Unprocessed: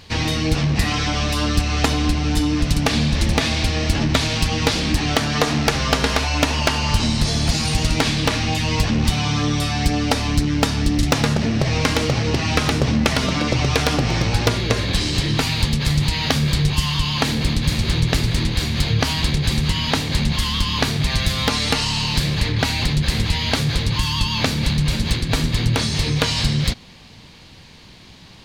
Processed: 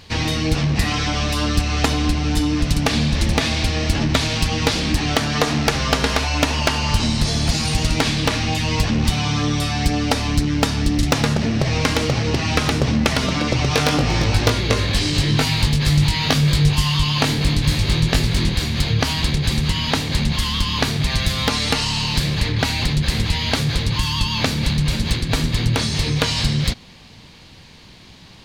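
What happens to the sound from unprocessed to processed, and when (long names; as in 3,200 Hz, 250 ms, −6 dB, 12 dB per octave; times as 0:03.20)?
0:13.69–0:18.55: double-tracking delay 20 ms −4.5 dB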